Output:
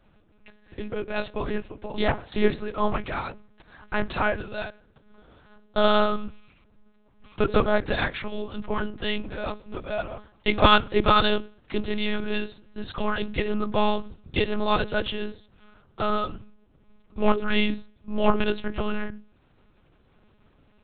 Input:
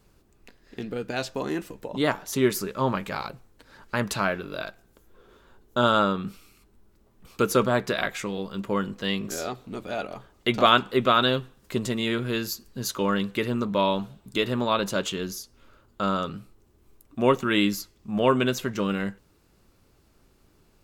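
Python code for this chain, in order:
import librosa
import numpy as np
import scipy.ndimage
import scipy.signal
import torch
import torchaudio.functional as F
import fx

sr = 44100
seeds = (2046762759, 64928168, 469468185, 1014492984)

y = fx.hum_notches(x, sr, base_hz=50, count=10)
y = fx.lpc_monotone(y, sr, seeds[0], pitch_hz=210.0, order=8)
y = y * 10.0 ** (2.0 / 20.0)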